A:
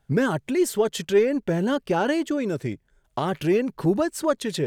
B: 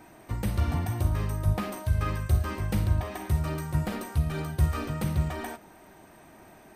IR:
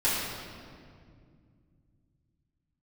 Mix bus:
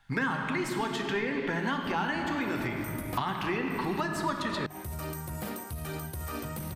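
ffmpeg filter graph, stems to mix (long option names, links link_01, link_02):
-filter_complex "[0:a]equalizer=frequency=500:width_type=o:width=1:gain=-11,equalizer=frequency=1000:width_type=o:width=1:gain=10,equalizer=frequency=2000:width_type=o:width=1:gain=9,equalizer=frequency=4000:width_type=o:width=1:gain=8,volume=-2.5dB,asplit=3[link_01][link_02][link_03];[link_02]volume=-13dB[link_04];[1:a]highpass=52,aemphasis=mode=production:type=50fm,alimiter=limit=-23.5dB:level=0:latency=1:release=11,adelay=1550,volume=-1.5dB[link_05];[link_03]apad=whole_len=366245[link_06];[link_05][link_06]sidechaincompress=threshold=-39dB:ratio=5:attack=11:release=130[link_07];[2:a]atrim=start_sample=2205[link_08];[link_04][link_08]afir=irnorm=-1:irlink=0[link_09];[link_01][link_07][link_09]amix=inputs=3:normalize=0,bandreject=frequency=50:width_type=h:width=6,bandreject=frequency=100:width_type=h:width=6,bandreject=frequency=150:width_type=h:width=6,acrossover=split=300|1700[link_10][link_11][link_12];[link_10]acompressor=threshold=-36dB:ratio=4[link_13];[link_11]acompressor=threshold=-32dB:ratio=4[link_14];[link_12]acompressor=threshold=-42dB:ratio=4[link_15];[link_13][link_14][link_15]amix=inputs=3:normalize=0"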